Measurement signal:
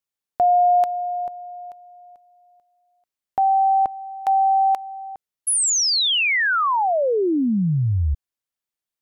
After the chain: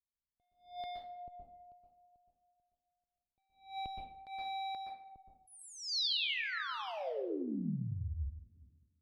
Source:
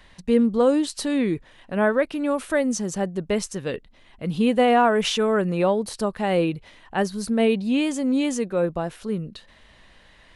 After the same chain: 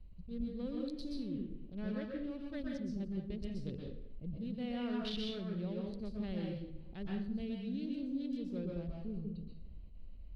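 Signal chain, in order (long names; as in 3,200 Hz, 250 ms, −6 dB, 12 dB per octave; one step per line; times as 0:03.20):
adaptive Wiener filter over 25 samples
guitar amp tone stack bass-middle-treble 10-0-1
tape delay 201 ms, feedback 43%, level −21 dB, low-pass 2,500 Hz
downward compressor 10 to 1, threshold −48 dBFS
high shelf with overshoot 5,600 Hz −10.5 dB, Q 3
dense smooth reverb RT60 0.55 s, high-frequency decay 0.8×, pre-delay 110 ms, DRR −1 dB
level that may rise only so fast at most 150 dB per second
level +8.5 dB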